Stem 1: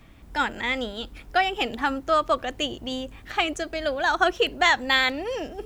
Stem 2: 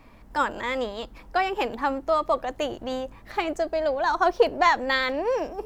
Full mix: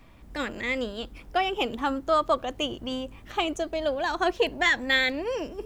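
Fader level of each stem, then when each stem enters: -4.5, -6.0 dB; 0.00, 0.00 s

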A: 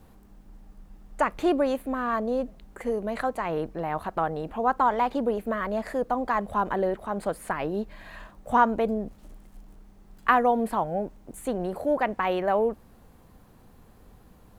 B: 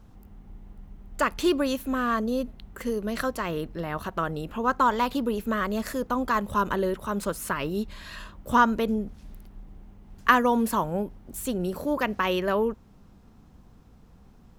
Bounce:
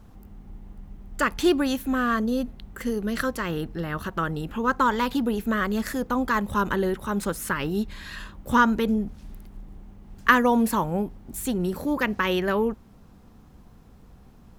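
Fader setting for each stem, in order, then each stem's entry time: -7.0, +2.0 dB; 0.00, 0.00 s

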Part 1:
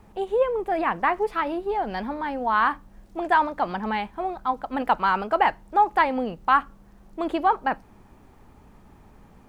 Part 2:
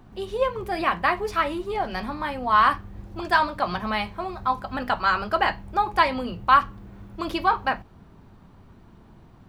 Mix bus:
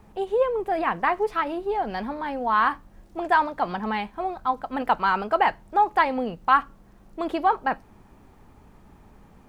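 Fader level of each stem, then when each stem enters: -0.5, -15.0 dB; 0.00, 0.00 s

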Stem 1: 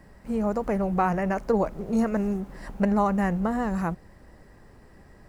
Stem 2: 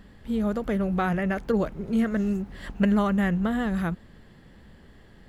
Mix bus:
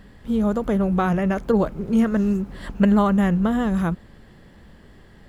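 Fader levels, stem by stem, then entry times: -4.0, +2.5 dB; 0.00, 0.00 s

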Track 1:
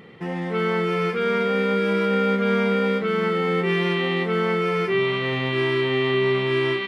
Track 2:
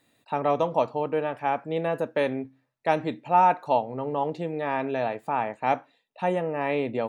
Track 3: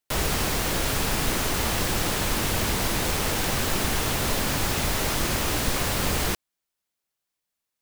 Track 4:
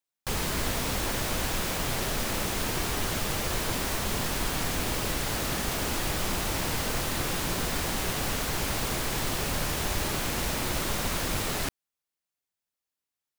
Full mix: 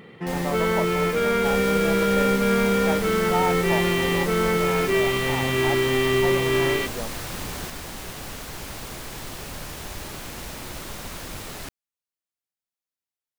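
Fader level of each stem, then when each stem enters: 0.0, -6.5, -10.0, -6.0 dB; 0.00, 0.00, 1.35, 0.00 s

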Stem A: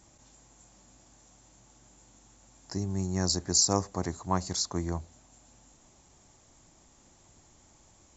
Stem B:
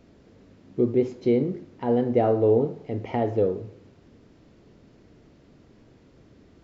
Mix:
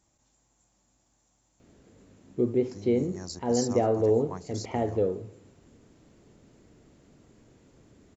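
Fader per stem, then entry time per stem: -11.5, -3.5 dB; 0.00, 1.60 s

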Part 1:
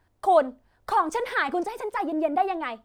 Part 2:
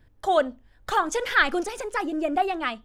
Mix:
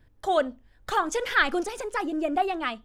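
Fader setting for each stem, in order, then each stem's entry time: -18.5, -1.5 dB; 0.00, 0.00 s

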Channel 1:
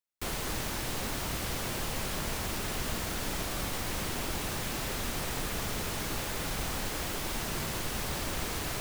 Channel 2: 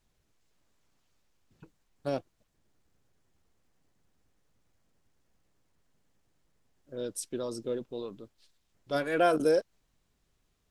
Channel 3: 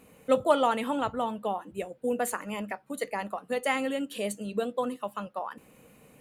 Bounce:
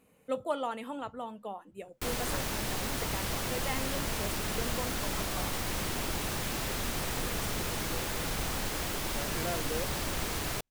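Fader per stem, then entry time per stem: +0.5, -12.5, -9.5 dB; 1.80, 0.25, 0.00 s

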